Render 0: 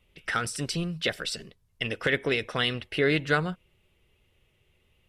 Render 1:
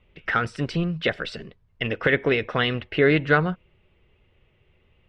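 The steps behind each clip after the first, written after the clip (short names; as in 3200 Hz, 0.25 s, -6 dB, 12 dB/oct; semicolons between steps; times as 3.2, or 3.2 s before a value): LPF 2400 Hz 12 dB/oct; gain +6 dB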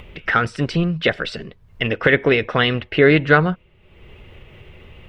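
upward compressor, threshold -34 dBFS; gain +5.5 dB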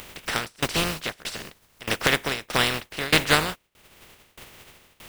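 spectral contrast lowered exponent 0.3; tremolo saw down 1.6 Hz, depth 95%; gain -2.5 dB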